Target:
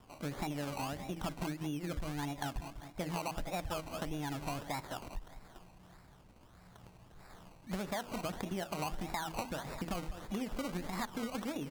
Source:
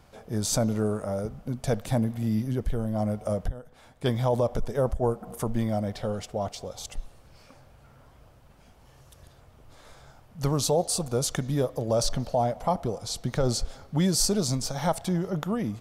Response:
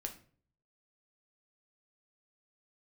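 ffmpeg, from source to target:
-filter_complex "[0:a]acrossover=split=2400[link_01][link_02];[link_01]bandreject=frequency=60:width_type=h:width=6,bandreject=frequency=120:width_type=h:width=6,bandreject=frequency=180:width_type=h:width=6,bandreject=frequency=240:width_type=h:width=6,bandreject=frequency=300:width_type=h:width=6,bandreject=frequency=360:width_type=h:width=6,bandreject=frequency=420:width_type=h:width=6[link_03];[link_03][link_02]amix=inputs=2:normalize=0,aecho=1:1:266|532|798|1064:0.158|0.0777|0.0381|0.0186,acrossover=split=2600[link_04][link_05];[link_05]acompressor=threshold=-41dB:ratio=4:attack=1:release=60[link_06];[link_04][link_06]amix=inputs=2:normalize=0,acrusher=samples=27:mix=1:aa=0.000001:lfo=1:lforange=16.2:lforate=1.2,acompressor=threshold=-31dB:ratio=6,asetrate=59535,aresample=44100,volume=-4dB"

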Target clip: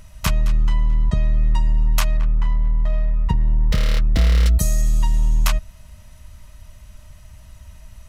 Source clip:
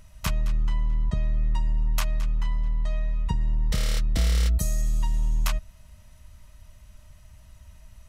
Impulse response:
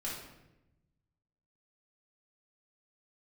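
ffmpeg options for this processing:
-filter_complex "[0:a]asettb=1/sr,asplit=3[link_01][link_02][link_03];[link_01]atrim=end=2.174[link_04];[link_02]atrim=start=2.17:end=4.46,asetpts=PTS-STARTPTS,afade=type=in:duration=0.004:curve=qsin,afade=type=out:start_time=2.286:duration=0.004:curve=qsin,adynamicsmooth=sensitivity=8:basefreq=1000[link_05];[link_03]atrim=start=4.456[link_06];[link_04][link_05]acrossfade=duration=0.004:curve1=hsin:curve2=qsin[link_07];[link_07][link_06]acrossfade=duration=0.004:curve1=qsin:curve2=hsin,volume=7dB"

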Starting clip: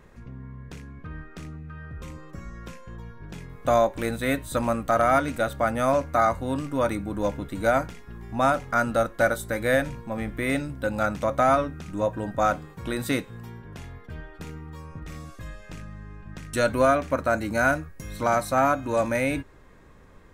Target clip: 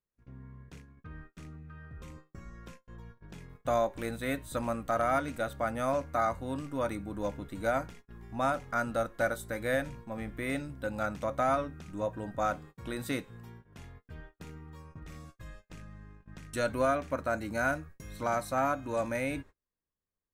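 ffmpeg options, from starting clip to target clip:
ffmpeg -i in.wav -af "agate=range=-35dB:threshold=-40dB:ratio=16:detection=peak,volume=-8dB" out.wav

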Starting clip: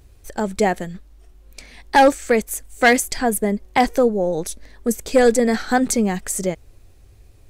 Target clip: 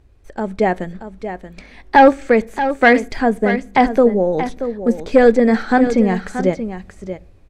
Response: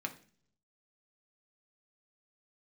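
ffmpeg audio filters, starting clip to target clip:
-filter_complex "[0:a]acrossover=split=5300[link_01][link_02];[link_02]acompressor=threshold=-40dB:ratio=4:attack=1:release=60[link_03];[link_01][link_03]amix=inputs=2:normalize=0,aemphasis=mode=reproduction:type=75kf,dynaudnorm=framelen=170:gausssize=7:maxgain=11.5dB,aecho=1:1:630:0.299,asplit=2[link_04][link_05];[1:a]atrim=start_sample=2205,lowpass=4900[link_06];[link_05][link_06]afir=irnorm=-1:irlink=0,volume=-13.5dB[link_07];[link_04][link_07]amix=inputs=2:normalize=0,volume=-2.5dB"

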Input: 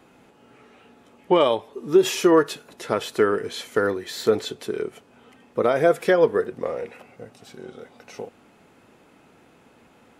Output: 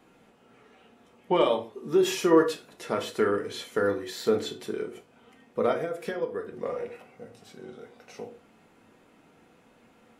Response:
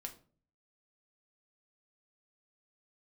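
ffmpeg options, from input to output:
-filter_complex "[0:a]asplit=3[link_01][link_02][link_03];[link_01]afade=type=out:start_time=5.72:duration=0.02[link_04];[link_02]acompressor=threshold=-23dB:ratio=12,afade=type=in:start_time=5.72:duration=0.02,afade=type=out:start_time=6.51:duration=0.02[link_05];[link_03]afade=type=in:start_time=6.51:duration=0.02[link_06];[link_04][link_05][link_06]amix=inputs=3:normalize=0[link_07];[1:a]atrim=start_sample=2205,afade=type=out:start_time=0.2:duration=0.01,atrim=end_sample=9261[link_08];[link_07][link_08]afir=irnorm=-1:irlink=0,volume=-1dB"

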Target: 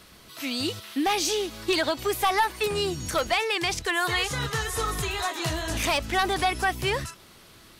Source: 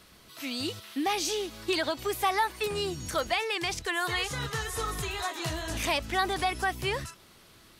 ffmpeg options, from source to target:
ffmpeg -i in.wav -af "aeval=exprs='clip(val(0),-1,0.0668)':channel_layout=same,volume=4.5dB" out.wav

